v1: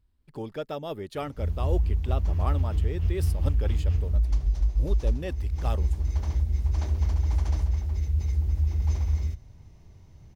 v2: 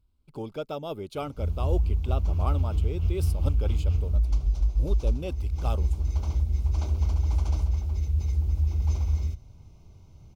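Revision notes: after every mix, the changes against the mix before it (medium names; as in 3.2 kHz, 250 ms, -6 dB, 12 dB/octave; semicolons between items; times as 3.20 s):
master: add Butterworth band-stop 1.8 kHz, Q 3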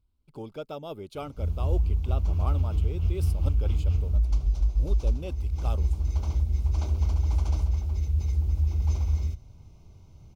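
speech -3.5 dB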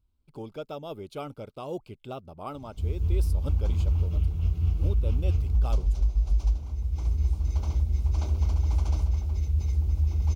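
background: entry +1.40 s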